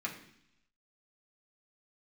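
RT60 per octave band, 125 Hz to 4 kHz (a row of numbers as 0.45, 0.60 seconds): 0.95, 0.90, 0.70, 0.70, 0.90, 1.0 seconds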